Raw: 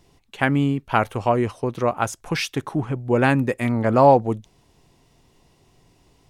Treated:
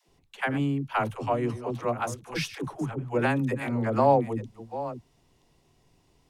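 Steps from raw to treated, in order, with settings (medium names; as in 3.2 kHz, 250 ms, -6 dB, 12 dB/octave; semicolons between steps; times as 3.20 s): chunks repeated in reverse 493 ms, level -13 dB; phase dispersion lows, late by 85 ms, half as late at 340 Hz; trim -7 dB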